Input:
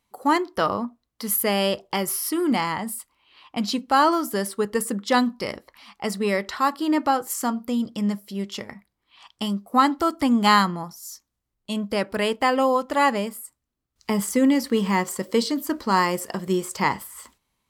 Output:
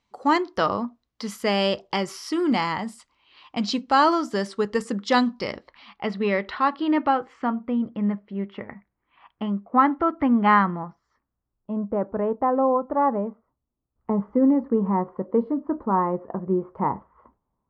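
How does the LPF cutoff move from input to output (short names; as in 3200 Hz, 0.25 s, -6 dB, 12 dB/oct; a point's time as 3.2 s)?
LPF 24 dB/oct
5.27 s 6400 Hz
6.04 s 3600 Hz
6.79 s 3600 Hz
7.85 s 2100 Hz
10.9 s 2100 Hz
11.86 s 1100 Hz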